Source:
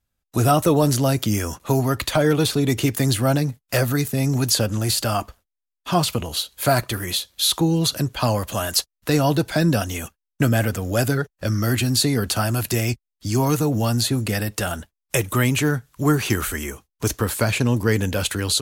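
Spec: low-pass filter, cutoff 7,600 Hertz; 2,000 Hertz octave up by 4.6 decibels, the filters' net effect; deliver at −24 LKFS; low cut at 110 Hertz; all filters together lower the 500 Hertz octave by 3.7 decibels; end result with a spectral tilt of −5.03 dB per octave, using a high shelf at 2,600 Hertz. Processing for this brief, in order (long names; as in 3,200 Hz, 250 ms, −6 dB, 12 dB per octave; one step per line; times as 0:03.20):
high-pass filter 110 Hz
low-pass filter 7,600 Hz
parametric band 500 Hz −5 dB
parametric band 2,000 Hz +8.5 dB
high-shelf EQ 2,600 Hz −5 dB
level −1 dB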